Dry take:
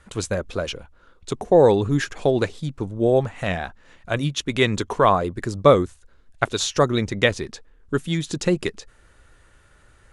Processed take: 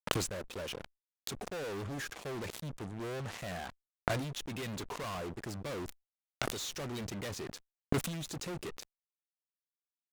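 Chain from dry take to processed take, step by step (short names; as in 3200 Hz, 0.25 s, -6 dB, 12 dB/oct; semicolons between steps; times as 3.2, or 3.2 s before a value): HPF 97 Hz 12 dB/oct; fuzz box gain 36 dB, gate -40 dBFS; flipped gate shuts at -24 dBFS, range -29 dB; sustainer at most 60 dB/s; gain +4.5 dB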